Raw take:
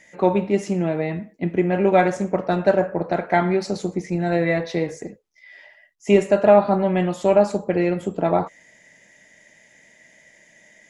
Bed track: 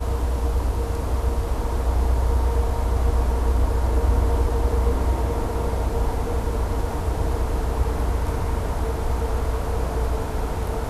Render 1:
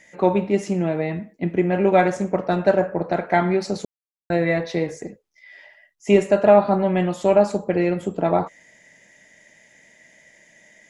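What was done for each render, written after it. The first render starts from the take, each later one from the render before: 3.85–4.30 s: mute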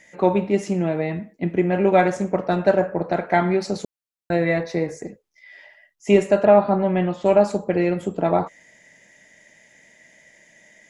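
4.63–5.05 s: peaking EQ 3.2 kHz -12.5 dB 0.43 oct; 6.45–7.26 s: distance through air 160 m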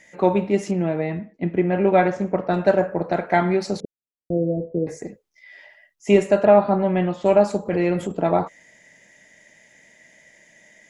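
0.71–2.54 s: distance through air 140 m; 3.80–4.87 s: steep low-pass 550 Hz; 7.65–8.12 s: transient shaper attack -4 dB, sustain +5 dB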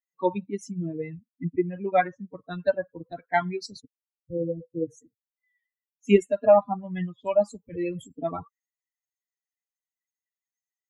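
expander on every frequency bin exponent 3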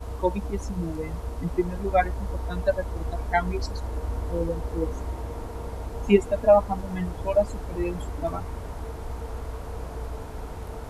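add bed track -10.5 dB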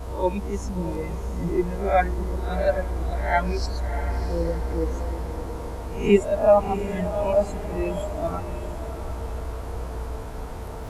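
reverse spectral sustain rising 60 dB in 0.42 s; on a send: echo that smears into a reverb 681 ms, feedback 42%, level -10.5 dB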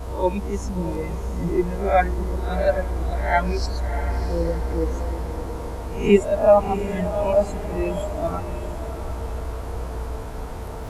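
trim +2 dB

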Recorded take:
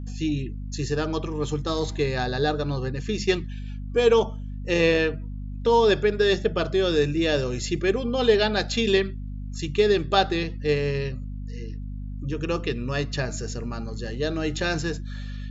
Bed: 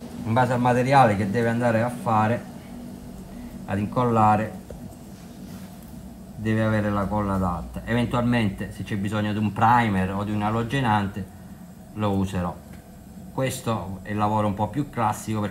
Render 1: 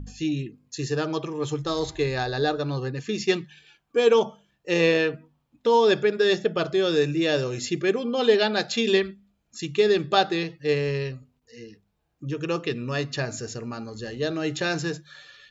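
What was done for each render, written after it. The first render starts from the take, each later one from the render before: de-hum 50 Hz, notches 5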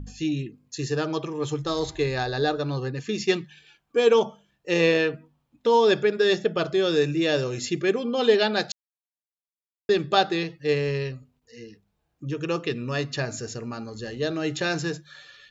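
8.72–9.89 s: mute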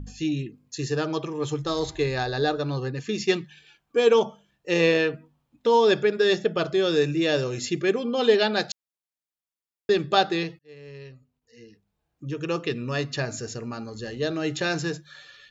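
10.59–12.64 s: fade in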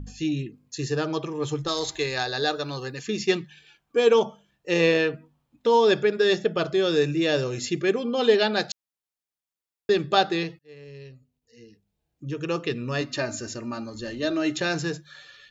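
1.68–3.07 s: tilt EQ +2.5 dB/octave; 10.84–12.28 s: peaking EQ 1.2 kHz -8 dB 1.3 oct; 13.01–14.58 s: comb 3.3 ms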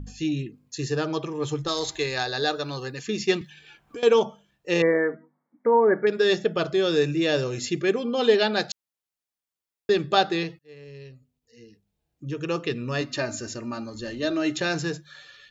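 3.41–4.03 s: three bands compressed up and down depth 100%; 4.82–6.07 s: brick-wall FIR band-pass 160–2300 Hz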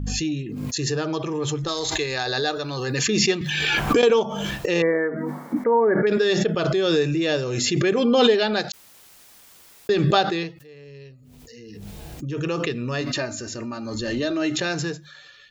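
swell ahead of each attack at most 21 dB/s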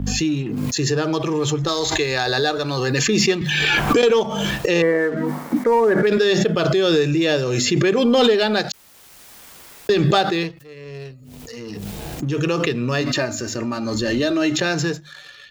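waveshaping leveller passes 1; three bands compressed up and down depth 40%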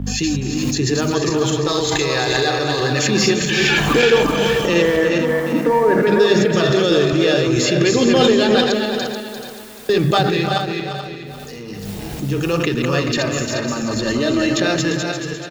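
backward echo that repeats 216 ms, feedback 55%, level -3.5 dB; delay 347 ms -9 dB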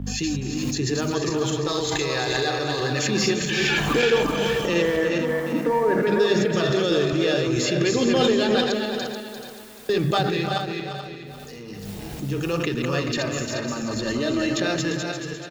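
trim -6 dB

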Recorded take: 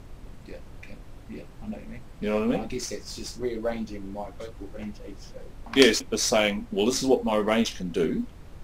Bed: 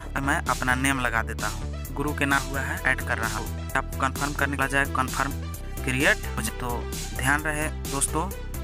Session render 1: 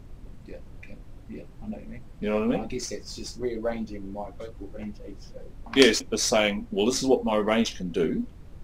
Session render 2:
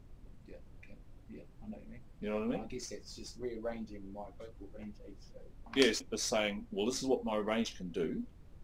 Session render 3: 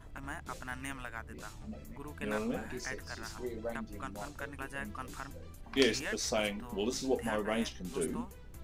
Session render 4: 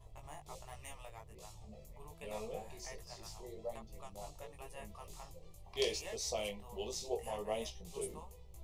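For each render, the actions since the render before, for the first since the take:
noise reduction 6 dB, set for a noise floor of -46 dBFS
trim -10.5 dB
add bed -18.5 dB
static phaser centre 630 Hz, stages 4; chorus 1.3 Hz, delay 17.5 ms, depth 2.5 ms

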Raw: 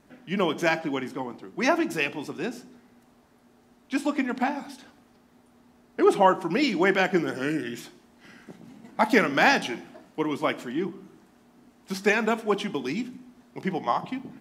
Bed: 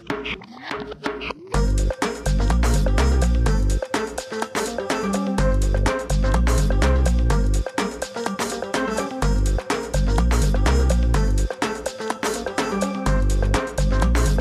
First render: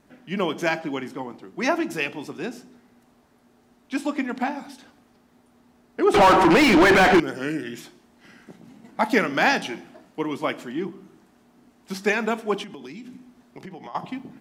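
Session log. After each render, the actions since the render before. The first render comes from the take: 6.14–7.20 s: overdrive pedal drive 36 dB, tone 1.7 kHz, clips at -7 dBFS; 12.63–13.95 s: compression 10:1, threshold -35 dBFS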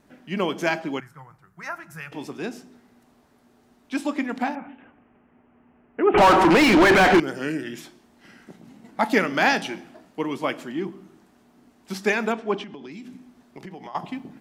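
1.00–2.12 s: FFT filter 160 Hz 0 dB, 240 Hz -28 dB, 880 Hz -12 dB, 1.4 kHz -1 dB, 3.2 kHz -19 dB, 12 kHz -4 dB; 4.55–6.18 s: steep low-pass 2.9 kHz 72 dB/octave; 12.32–12.92 s: distance through air 120 m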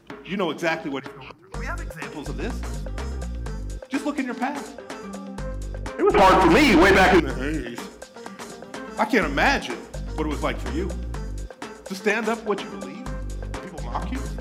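add bed -12.5 dB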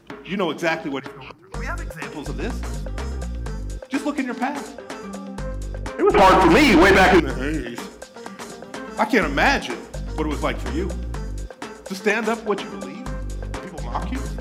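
trim +2 dB

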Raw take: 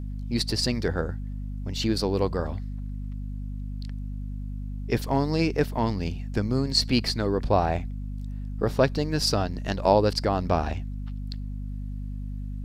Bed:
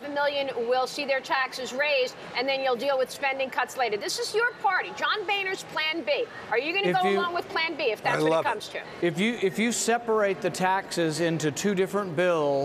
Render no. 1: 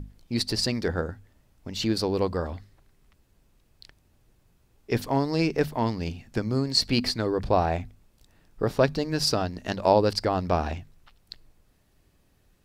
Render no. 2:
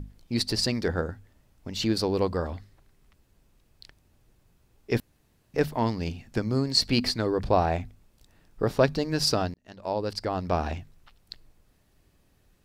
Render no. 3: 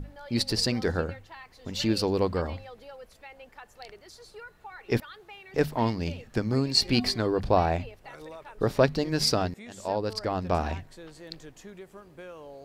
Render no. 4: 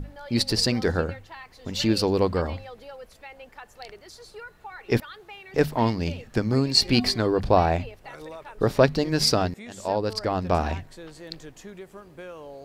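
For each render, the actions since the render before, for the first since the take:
hum notches 50/100/150/200/250 Hz
5.00–5.54 s: room tone; 9.54–10.77 s: fade in
add bed -20.5 dB
trim +3.5 dB

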